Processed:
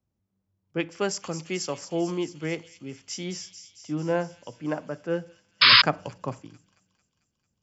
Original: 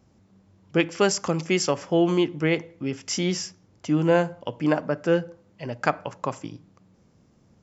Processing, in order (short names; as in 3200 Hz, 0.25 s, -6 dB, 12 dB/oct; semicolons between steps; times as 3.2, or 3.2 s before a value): 5.72–6.41 low shelf 450 Hz +8.5 dB; on a send: thin delay 0.223 s, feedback 76%, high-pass 4300 Hz, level -6 dB; 5.61–5.82 on the sum: painted sound noise 960–5200 Hz -10 dBFS; three-band expander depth 40%; gain -7.5 dB